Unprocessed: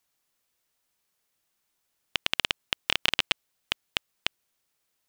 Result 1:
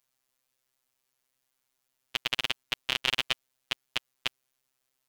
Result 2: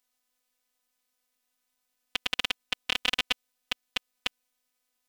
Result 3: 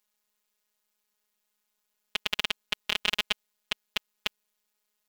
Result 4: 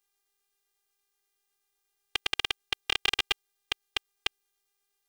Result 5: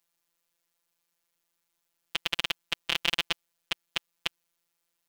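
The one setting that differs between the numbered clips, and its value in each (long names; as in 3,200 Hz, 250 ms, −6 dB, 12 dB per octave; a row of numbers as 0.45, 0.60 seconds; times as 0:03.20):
phases set to zero, frequency: 130, 250, 210, 400, 170 Hertz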